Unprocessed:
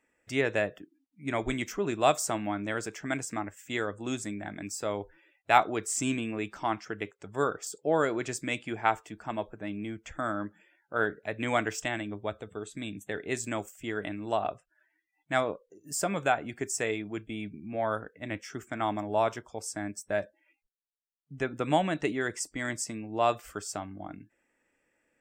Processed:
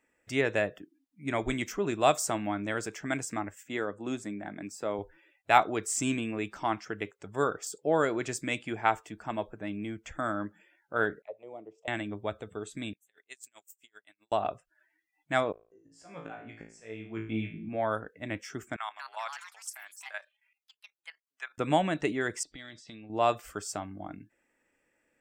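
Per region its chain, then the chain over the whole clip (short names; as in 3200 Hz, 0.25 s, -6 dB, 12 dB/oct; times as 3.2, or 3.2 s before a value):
3.63–4.99 HPF 150 Hz + high shelf 2700 Hz -9.5 dB
11.22–11.88 HPF 130 Hz + auto-wah 300–2100 Hz, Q 3.7, down, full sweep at -27 dBFS + fixed phaser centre 660 Hz, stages 4
12.93–14.32 differentiator + dB-linear tremolo 7.7 Hz, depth 35 dB
15.52–17.69 LPF 3500 Hz + auto swell 0.633 s + flutter echo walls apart 3.1 m, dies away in 0.42 s
18.76–21.58 HPF 1000 Hz 24 dB/oct + level quantiser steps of 12 dB + echoes that change speed 0.201 s, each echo +4 st, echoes 3, each echo -6 dB
22.43–23.1 notch 990 Hz, Q 7.5 + compressor 8:1, threshold -44 dBFS + synth low-pass 3700 Hz, resonance Q 7.7
whole clip: dry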